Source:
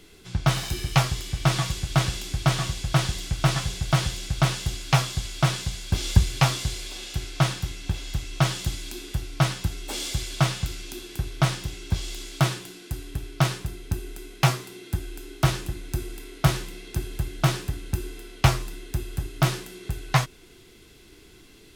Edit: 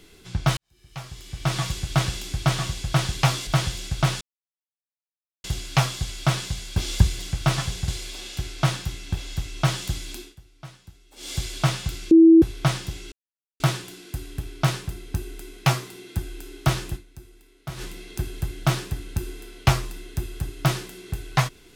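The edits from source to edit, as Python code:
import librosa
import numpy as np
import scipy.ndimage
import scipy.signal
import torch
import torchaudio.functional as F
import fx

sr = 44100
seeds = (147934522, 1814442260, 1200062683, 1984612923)

y = fx.edit(x, sr, fx.fade_in_span(start_s=0.57, length_s=1.08, curve='qua'),
    fx.swap(start_s=3.17, length_s=0.69, other_s=6.35, other_length_s=0.3),
    fx.insert_silence(at_s=4.6, length_s=1.23),
    fx.fade_down_up(start_s=8.92, length_s=1.21, db=-20.0, fade_s=0.2),
    fx.bleep(start_s=10.88, length_s=0.31, hz=327.0, db=-8.0),
    fx.silence(start_s=11.89, length_s=0.48),
    fx.fade_down_up(start_s=15.72, length_s=0.87, db=-15.5, fade_s=0.37, curve='exp'), tone=tone)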